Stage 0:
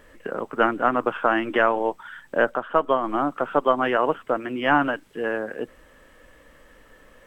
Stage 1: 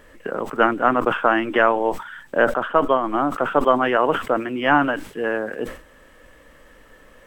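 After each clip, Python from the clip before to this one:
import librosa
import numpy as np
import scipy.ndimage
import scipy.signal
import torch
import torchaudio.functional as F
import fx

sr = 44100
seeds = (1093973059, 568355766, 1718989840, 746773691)

y = fx.sustainer(x, sr, db_per_s=120.0)
y = F.gain(torch.from_numpy(y), 2.5).numpy()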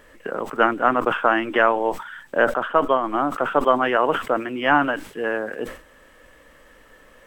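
y = fx.low_shelf(x, sr, hz=340.0, db=-4.0)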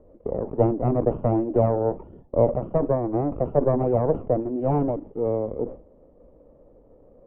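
y = fx.lower_of_two(x, sr, delay_ms=0.31)
y = fx.ladder_lowpass(y, sr, hz=750.0, resonance_pct=25)
y = F.gain(torch.from_numpy(y), 6.5).numpy()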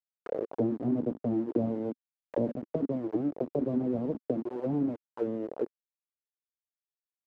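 y = np.where(np.abs(x) >= 10.0 ** (-25.0 / 20.0), x, 0.0)
y = fx.auto_wah(y, sr, base_hz=250.0, top_hz=1400.0, q=2.9, full_db=-20.0, direction='down')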